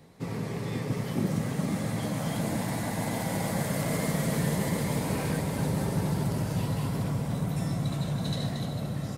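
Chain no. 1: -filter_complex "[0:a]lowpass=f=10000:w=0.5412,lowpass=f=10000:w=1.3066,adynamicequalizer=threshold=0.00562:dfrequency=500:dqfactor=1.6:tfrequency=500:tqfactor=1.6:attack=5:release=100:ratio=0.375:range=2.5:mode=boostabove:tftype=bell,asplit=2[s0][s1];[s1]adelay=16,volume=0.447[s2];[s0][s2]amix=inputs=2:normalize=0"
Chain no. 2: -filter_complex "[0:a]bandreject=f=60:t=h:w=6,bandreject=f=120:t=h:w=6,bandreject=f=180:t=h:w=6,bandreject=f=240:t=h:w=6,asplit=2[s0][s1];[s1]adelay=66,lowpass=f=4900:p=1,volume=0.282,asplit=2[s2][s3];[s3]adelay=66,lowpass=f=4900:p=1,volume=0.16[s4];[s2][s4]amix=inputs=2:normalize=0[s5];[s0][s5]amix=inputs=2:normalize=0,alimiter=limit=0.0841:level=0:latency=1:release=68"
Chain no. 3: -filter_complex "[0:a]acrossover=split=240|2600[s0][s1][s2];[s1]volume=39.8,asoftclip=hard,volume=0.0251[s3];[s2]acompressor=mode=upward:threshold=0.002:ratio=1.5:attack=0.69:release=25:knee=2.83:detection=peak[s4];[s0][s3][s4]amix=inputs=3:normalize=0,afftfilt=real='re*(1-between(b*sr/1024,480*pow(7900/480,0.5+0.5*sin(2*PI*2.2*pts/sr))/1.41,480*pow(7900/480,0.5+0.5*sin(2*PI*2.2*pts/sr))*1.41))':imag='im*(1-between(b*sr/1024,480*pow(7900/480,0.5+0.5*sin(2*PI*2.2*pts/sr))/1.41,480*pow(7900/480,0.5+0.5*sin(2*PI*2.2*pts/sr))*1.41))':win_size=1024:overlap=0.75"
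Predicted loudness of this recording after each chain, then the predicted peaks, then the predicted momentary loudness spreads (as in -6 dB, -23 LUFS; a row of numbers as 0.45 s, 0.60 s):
-29.0 LUFS, -31.5 LUFS, -31.0 LUFS; -15.0 dBFS, -21.5 dBFS, -18.0 dBFS; 4 LU, 2 LU, 4 LU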